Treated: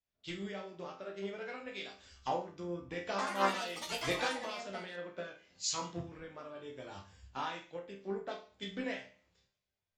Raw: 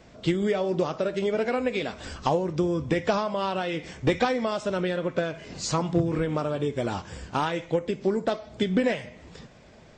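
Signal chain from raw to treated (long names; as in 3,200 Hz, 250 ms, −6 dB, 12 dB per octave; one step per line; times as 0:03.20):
elliptic low-pass filter 7,300 Hz, stop band 40 dB
tilt shelving filter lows −5 dB, about 750 Hz
resonators tuned to a chord C2 sus4, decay 0.47 s
0:03.10–0:05.47: delay with pitch and tempo change per echo 84 ms, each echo +5 semitones, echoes 3
multiband upward and downward expander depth 100%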